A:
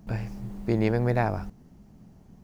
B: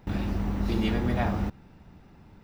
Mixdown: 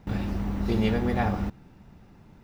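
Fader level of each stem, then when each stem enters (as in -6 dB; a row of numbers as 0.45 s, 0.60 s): -5.0 dB, -1.0 dB; 0.00 s, 0.00 s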